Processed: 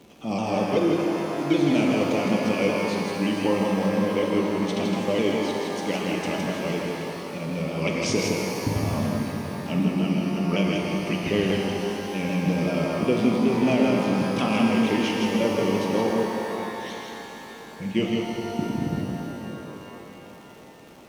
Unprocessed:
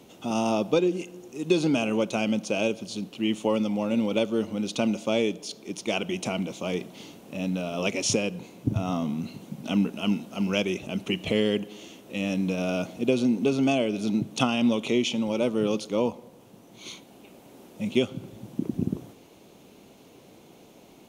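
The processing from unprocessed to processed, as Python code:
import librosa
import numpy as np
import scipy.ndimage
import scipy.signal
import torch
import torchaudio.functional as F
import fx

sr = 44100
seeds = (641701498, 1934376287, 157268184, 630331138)

y = fx.pitch_ramps(x, sr, semitones=-2.5, every_ms=192)
y = fx.dmg_crackle(y, sr, seeds[0], per_s=110.0, level_db=-38.0)
y = fx.high_shelf(y, sr, hz=4800.0, db=-7.0)
y = y + 10.0 ** (-4.0 / 20.0) * np.pad(y, (int(162 * sr / 1000.0), 0))[:len(y)]
y = fx.rev_shimmer(y, sr, seeds[1], rt60_s=3.5, semitones=12, shimmer_db=-8, drr_db=0.5)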